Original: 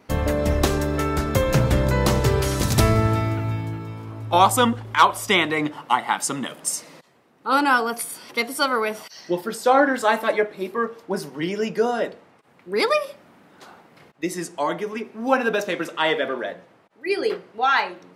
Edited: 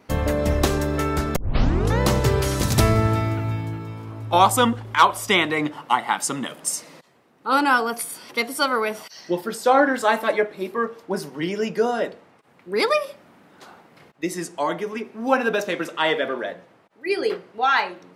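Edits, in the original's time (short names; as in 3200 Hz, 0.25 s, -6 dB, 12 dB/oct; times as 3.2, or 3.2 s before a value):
1.36 tape start 0.64 s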